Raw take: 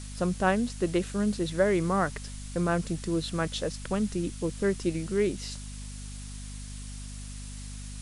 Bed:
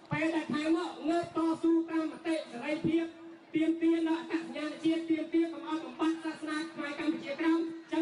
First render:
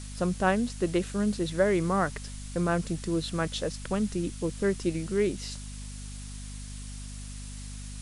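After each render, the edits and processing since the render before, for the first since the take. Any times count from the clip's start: nothing audible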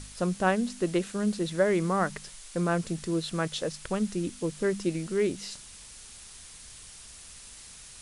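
de-hum 50 Hz, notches 5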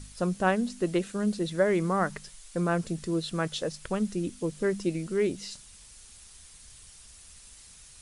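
denoiser 6 dB, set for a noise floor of -48 dBFS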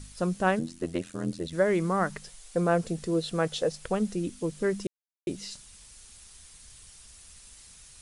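0.59–1.53 AM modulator 85 Hz, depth 100%; 2.22–4.16 small resonant body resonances 490/720 Hz, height 7 dB, ringing for 25 ms; 4.87–5.27 mute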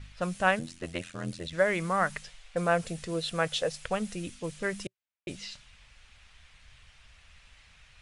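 low-pass opened by the level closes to 2300 Hz, open at -25.5 dBFS; EQ curve 120 Hz 0 dB, 180 Hz -5 dB, 380 Hz -9 dB, 580 Hz 0 dB, 980 Hz 0 dB, 2500 Hz +7 dB, 4700 Hz +1 dB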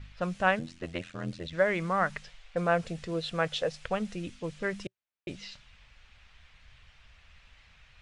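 air absorption 96 m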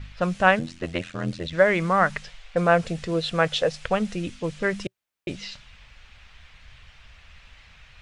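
gain +7.5 dB

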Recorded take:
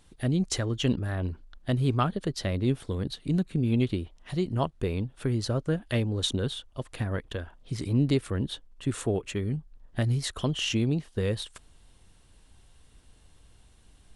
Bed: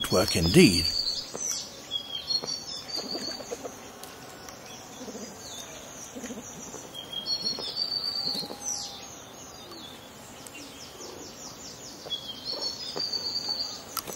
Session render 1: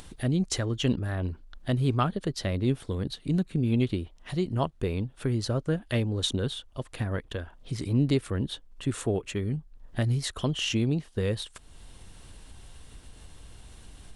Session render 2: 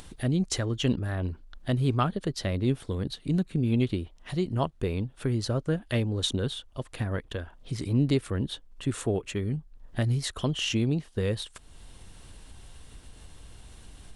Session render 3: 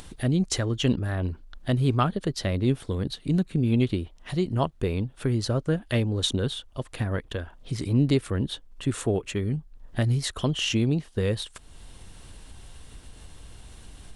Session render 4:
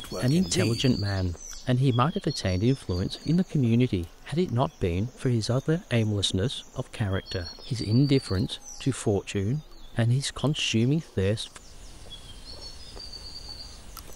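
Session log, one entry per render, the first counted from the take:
upward compressor, threshold -36 dBFS
nothing audible
gain +2.5 dB
add bed -11 dB

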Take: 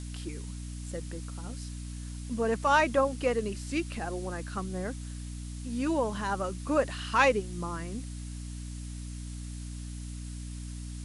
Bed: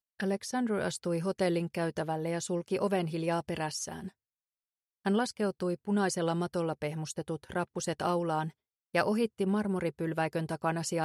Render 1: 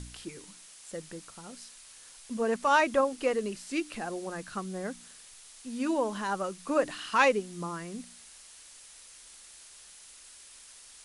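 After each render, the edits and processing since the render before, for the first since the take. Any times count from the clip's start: de-hum 60 Hz, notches 5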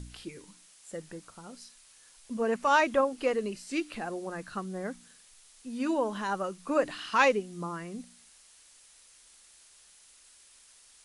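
noise print and reduce 6 dB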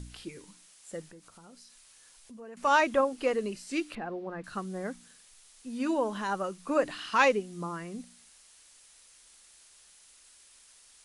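1.07–2.57 compressor 2.5:1, threshold -52 dBFS; 3.95–4.44 air absorption 340 m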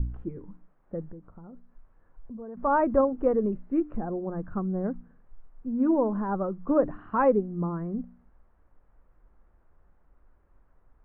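LPF 1400 Hz 24 dB/oct; tilt -4 dB/oct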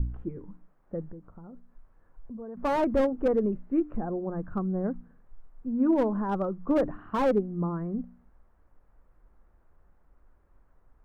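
slew limiter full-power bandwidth 50 Hz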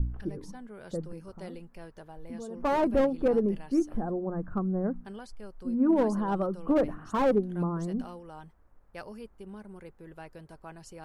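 add bed -15 dB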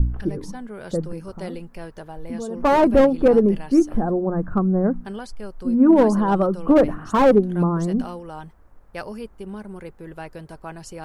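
gain +10 dB

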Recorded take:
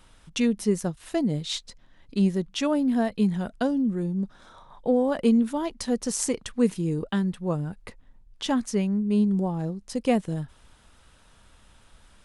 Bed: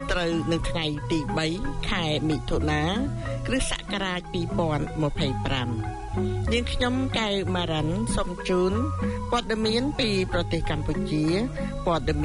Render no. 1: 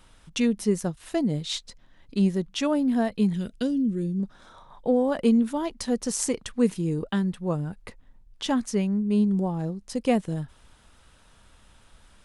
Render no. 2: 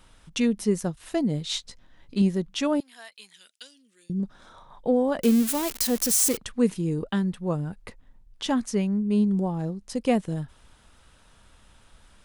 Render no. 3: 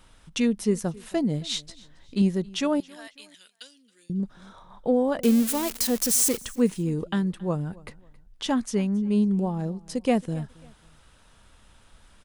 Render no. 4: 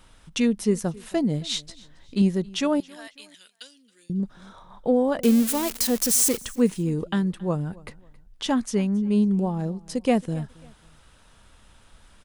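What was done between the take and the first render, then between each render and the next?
3.33–4.2 EQ curve 480 Hz 0 dB, 720 Hz -19 dB, 2800 Hz +2 dB
1.48–2.22 doubler 16 ms -5.5 dB; 2.8–4.1 Bessel high-pass 2800 Hz; 5.22–6.37 switching spikes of -18.5 dBFS
feedback echo 0.272 s, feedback 34%, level -23 dB
gain +1.5 dB

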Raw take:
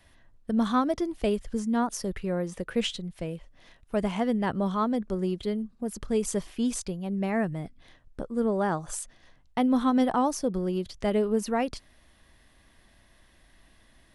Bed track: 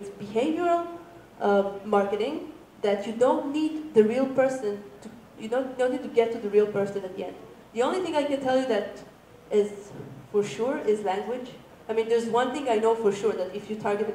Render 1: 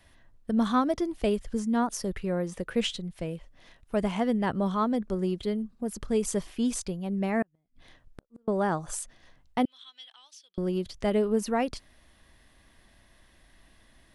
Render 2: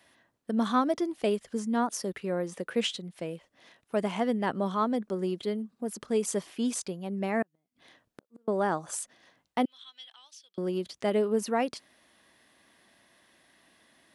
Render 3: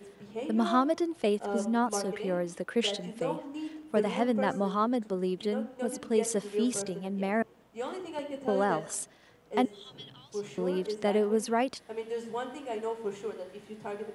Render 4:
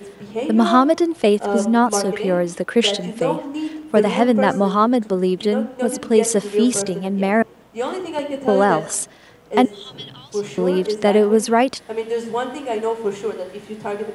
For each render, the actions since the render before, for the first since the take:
7.42–8.48 flipped gate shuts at -26 dBFS, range -41 dB; 9.65–10.58 ladder band-pass 3600 Hz, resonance 65%
HPF 220 Hz 12 dB/oct
add bed track -11.5 dB
gain +12 dB; limiter -3 dBFS, peak gain reduction 1 dB

